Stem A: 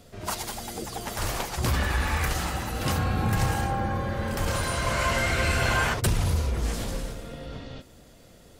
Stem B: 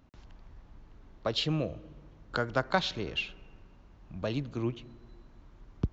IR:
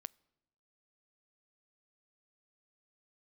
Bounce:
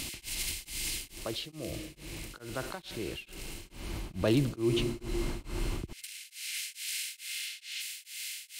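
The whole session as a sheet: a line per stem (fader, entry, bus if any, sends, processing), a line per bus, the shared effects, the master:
−1.0 dB, 0.00 s, send −12.5 dB, compressor on every frequency bin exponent 0.4; Butterworth high-pass 2,300 Hz 36 dB per octave; downward compressor, threshold −31 dBFS, peak gain reduction 8.5 dB; automatic ducking −15 dB, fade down 0.25 s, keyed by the second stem
0:03.63 −11.5 dB → 0:04.17 −0.5 dB, 0.00 s, send −24 dB, parametric band 340 Hz +9 dB 0.27 octaves; envelope flattener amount 70%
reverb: on, RT60 0.95 s, pre-delay 8 ms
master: tremolo along a rectified sine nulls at 2.3 Hz

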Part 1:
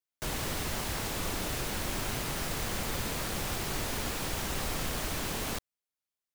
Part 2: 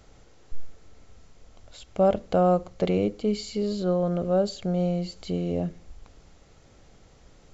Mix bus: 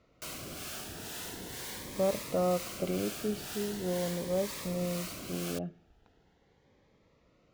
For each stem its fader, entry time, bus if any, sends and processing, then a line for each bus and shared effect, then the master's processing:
−3.0 dB, 0.00 s, no send, notch filter 830 Hz, Q 12; two-band tremolo in antiphase 2.1 Hz, depth 50%, crossover 620 Hz
−6.0 dB, 0.00 s, no send, low-pass filter 3,000 Hz 12 dB per octave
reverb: not used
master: high-pass filter 190 Hz 6 dB per octave; phaser whose notches keep moving one way rising 0.41 Hz

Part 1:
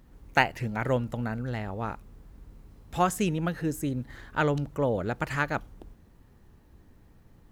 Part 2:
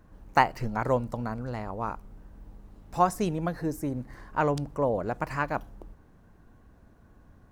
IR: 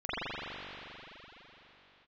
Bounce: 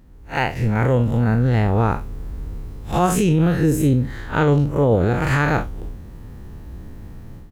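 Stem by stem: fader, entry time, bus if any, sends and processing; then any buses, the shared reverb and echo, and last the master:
+3.0 dB, 0.00 s, no send, spectrum smeared in time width 95 ms
−9.0 dB, 1.9 ms, no send, Chebyshev low-pass filter 570 Hz, order 3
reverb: not used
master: low-shelf EQ 300 Hz +6 dB; automatic gain control gain up to 13 dB; brickwall limiter −8.5 dBFS, peak gain reduction 6.5 dB

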